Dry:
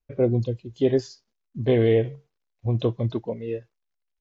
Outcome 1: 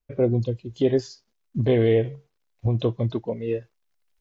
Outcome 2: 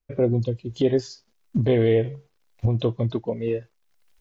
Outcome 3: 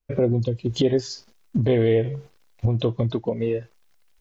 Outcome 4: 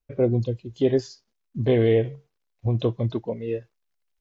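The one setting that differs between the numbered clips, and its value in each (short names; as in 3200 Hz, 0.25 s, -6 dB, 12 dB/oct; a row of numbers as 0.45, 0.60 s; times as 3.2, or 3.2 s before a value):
recorder AGC, rising by: 13, 32, 85, 5.1 dB/s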